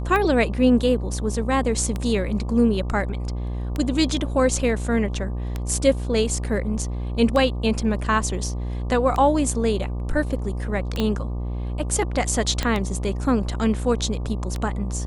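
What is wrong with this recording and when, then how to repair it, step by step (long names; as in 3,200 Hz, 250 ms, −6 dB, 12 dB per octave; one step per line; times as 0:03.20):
mains buzz 60 Hz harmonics 20 −27 dBFS
scratch tick 33 1/3 rpm −13 dBFS
0:11.00: click −11 dBFS
0:12.63: click −9 dBFS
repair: click removal
hum removal 60 Hz, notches 20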